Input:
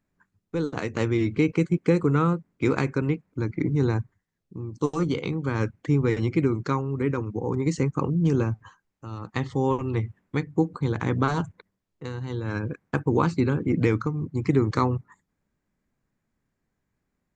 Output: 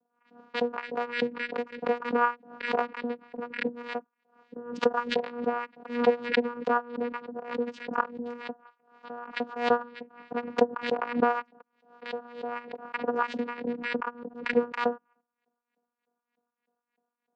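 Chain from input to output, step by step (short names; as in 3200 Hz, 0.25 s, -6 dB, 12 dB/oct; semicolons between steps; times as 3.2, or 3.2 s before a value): Wiener smoothing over 25 samples; in parallel at +1 dB: compressor, threshold -30 dBFS, peak gain reduction 14 dB; on the sum: LFO high-pass saw up 3.3 Hz 500–3000 Hz; vocoder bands 8, saw 240 Hz; air absorption 110 m; backwards sustainer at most 110 dB/s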